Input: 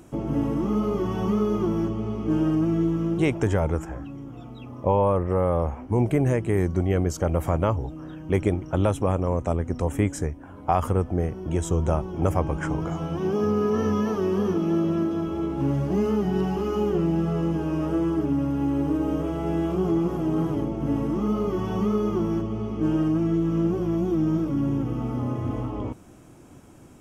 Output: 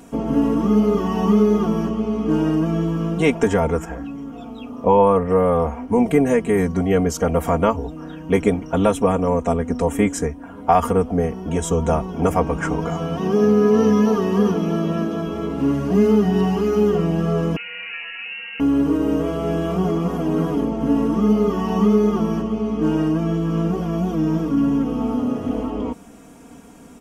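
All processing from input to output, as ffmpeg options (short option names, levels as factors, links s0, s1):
-filter_complex "[0:a]asettb=1/sr,asplit=3[s0][s1][s2];[s0]atrim=end=17.564[s3];[s1]atrim=start=17.56:end=18.6,asetpts=PTS-STARTPTS,afade=t=in:d=0.004:c=qsin,afade=t=out:st=1.036:d=0.004:c=qsin,highpass=f=1400:p=1,aeval=exprs='val(0)+0.00562*(sin(2*PI*60*n/s)+sin(2*PI*2*60*n/s)/2+sin(2*PI*3*60*n/s)/3+sin(2*PI*4*60*n/s)/4+sin(2*PI*5*60*n/s)/5)':c=same,lowpass=f=2600:t=q:w=0.5098,lowpass=f=2600:t=q:w=0.6013,lowpass=f=2600:t=q:w=0.9,lowpass=f=2600:t=q:w=2.563,afreqshift=-3000[s4];[s2]atrim=start=18.596[s5];[s3][s4]acrossfade=d=0.004:c1=hsin:c2=qsin[s6];[s6][s5]acrossfade=d=0.004:c1=qsin:c2=hsin,lowshelf=f=89:g=-7.5,aecho=1:1:4.3:0.96,volume=1.68"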